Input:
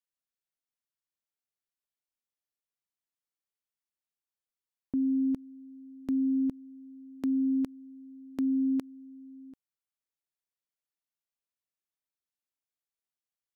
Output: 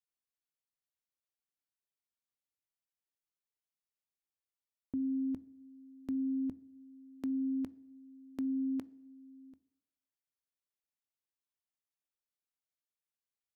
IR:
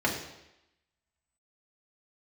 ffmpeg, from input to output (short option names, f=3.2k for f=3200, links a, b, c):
-filter_complex "[0:a]equalizer=f=83:w=4.9:g=7.5,asplit=2[a][b];[1:a]atrim=start_sample=2205,adelay=18[c];[b][c]afir=irnorm=-1:irlink=0,volume=-29.5dB[d];[a][d]amix=inputs=2:normalize=0,volume=-6dB"